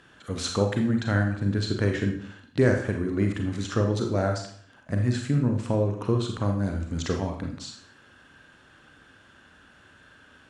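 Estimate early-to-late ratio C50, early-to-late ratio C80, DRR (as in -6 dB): 6.0 dB, 10.0 dB, 3.0 dB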